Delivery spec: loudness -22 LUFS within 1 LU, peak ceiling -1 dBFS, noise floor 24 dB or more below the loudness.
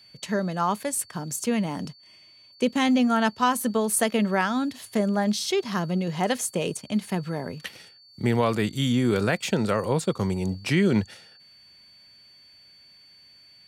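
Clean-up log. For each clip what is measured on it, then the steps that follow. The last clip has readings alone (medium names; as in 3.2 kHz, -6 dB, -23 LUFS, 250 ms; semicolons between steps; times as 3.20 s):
steady tone 4.5 kHz; tone level -51 dBFS; loudness -25.5 LUFS; peak level -8.0 dBFS; loudness target -22.0 LUFS
-> band-stop 4.5 kHz, Q 30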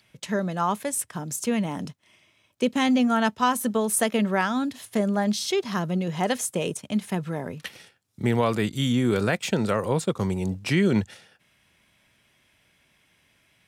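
steady tone not found; loudness -25.5 LUFS; peak level -8.0 dBFS; loudness target -22.0 LUFS
-> trim +3.5 dB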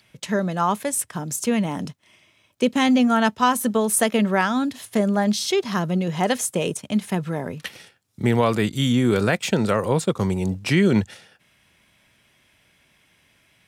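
loudness -22.0 LUFS; peak level -4.5 dBFS; noise floor -62 dBFS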